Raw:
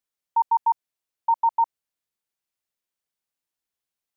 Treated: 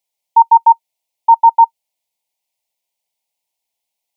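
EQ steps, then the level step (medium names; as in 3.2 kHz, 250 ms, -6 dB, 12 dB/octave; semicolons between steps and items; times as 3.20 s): FFT filter 380 Hz 0 dB, 650 Hz +12 dB, 920 Hz +13 dB, 1.4 kHz -20 dB, 2.1 kHz +9 dB; 0.0 dB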